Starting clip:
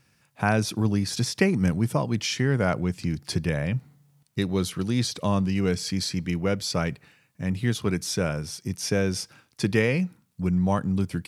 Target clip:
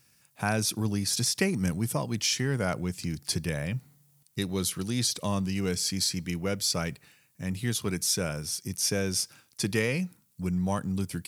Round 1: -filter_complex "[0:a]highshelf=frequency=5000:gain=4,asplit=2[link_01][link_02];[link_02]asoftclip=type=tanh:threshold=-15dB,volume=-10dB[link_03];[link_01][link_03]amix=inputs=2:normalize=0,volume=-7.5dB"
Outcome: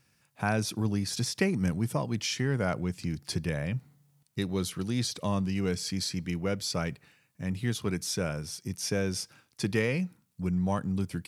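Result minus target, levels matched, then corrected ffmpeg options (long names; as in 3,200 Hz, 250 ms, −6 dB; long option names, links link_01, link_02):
8,000 Hz band −5.5 dB
-filter_complex "[0:a]highshelf=frequency=5000:gain=15.5,asplit=2[link_01][link_02];[link_02]asoftclip=type=tanh:threshold=-15dB,volume=-10dB[link_03];[link_01][link_03]amix=inputs=2:normalize=0,volume=-7.5dB"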